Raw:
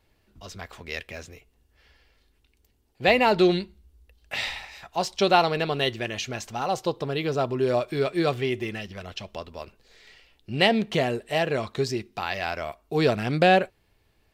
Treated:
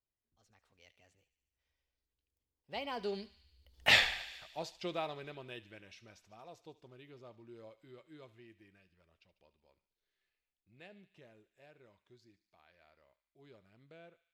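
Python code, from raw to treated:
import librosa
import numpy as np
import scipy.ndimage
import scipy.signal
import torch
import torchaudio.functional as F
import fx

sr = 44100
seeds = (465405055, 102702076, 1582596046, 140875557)

y = fx.doppler_pass(x, sr, speed_mps=36, closest_m=1.8, pass_at_s=3.92)
y = fx.echo_thinned(y, sr, ms=73, feedback_pct=75, hz=1200.0, wet_db=-15.5)
y = F.gain(torch.from_numpy(y), 6.5).numpy()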